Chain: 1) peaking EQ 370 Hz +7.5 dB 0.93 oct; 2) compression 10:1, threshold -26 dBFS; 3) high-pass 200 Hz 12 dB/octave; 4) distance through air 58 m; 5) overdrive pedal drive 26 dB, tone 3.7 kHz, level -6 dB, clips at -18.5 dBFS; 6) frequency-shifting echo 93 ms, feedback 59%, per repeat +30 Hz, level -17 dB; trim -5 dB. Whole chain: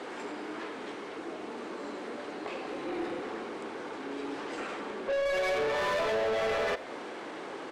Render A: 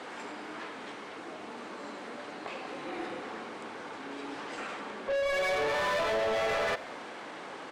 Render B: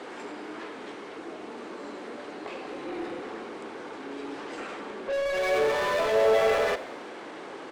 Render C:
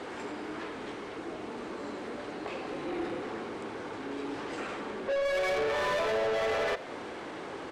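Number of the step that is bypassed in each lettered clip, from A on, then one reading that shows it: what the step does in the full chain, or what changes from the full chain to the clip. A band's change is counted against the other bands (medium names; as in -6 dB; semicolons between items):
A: 1, 250 Hz band -5.0 dB; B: 2, mean gain reduction 3.0 dB; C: 3, 125 Hz band +3.0 dB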